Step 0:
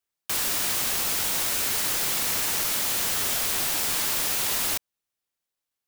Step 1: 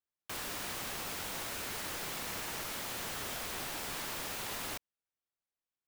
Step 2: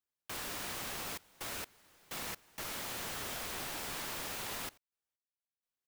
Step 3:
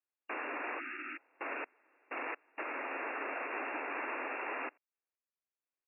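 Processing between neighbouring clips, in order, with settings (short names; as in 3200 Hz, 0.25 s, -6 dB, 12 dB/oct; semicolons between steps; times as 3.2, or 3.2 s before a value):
high shelf 3400 Hz -10.5 dB; gain -7 dB
step gate "xxxxx.x..x.xxxx" 64 bpm -24 dB; gain -1 dB
brick-wall FIR band-pass 250–2800 Hz; spectral repair 0.82–1.2, 370–1200 Hz after; upward expander 1.5:1, over -60 dBFS; gain +6.5 dB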